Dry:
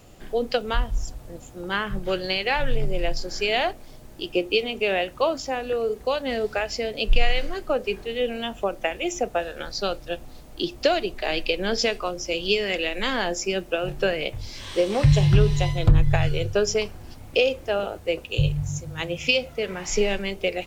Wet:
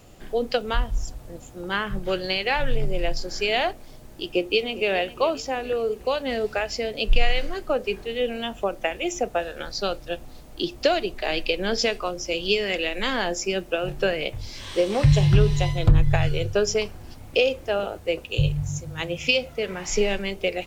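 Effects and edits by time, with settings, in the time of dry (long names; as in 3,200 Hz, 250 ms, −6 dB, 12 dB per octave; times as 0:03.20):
0:04.31–0:04.89: delay throw 410 ms, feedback 50%, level −16 dB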